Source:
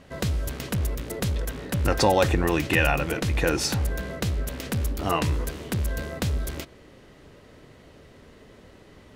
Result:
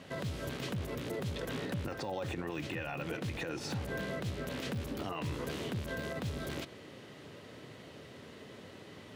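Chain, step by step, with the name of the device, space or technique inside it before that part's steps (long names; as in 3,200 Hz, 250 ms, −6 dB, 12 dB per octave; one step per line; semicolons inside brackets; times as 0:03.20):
broadcast voice chain (high-pass filter 96 Hz 24 dB per octave; de-essing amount 90%; downward compressor 5 to 1, threshold −32 dBFS, peak gain reduction 14.5 dB; parametric band 3,300 Hz +4 dB 1 octave; brickwall limiter −28 dBFS, peak gain reduction 8 dB)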